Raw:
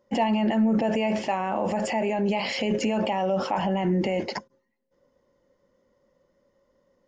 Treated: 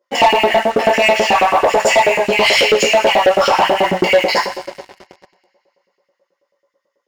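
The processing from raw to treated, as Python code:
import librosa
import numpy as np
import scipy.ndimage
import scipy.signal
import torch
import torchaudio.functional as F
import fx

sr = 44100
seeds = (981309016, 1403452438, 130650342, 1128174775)

y = fx.rev_double_slope(x, sr, seeds[0], early_s=0.52, late_s=3.2, knee_db=-18, drr_db=-6.0)
y = fx.filter_lfo_highpass(y, sr, shape='saw_up', hz=9.2, low_hz=340.0, high_hz=2700.0, q=1.5)
y = fx.leveller(y, sr, passes=3)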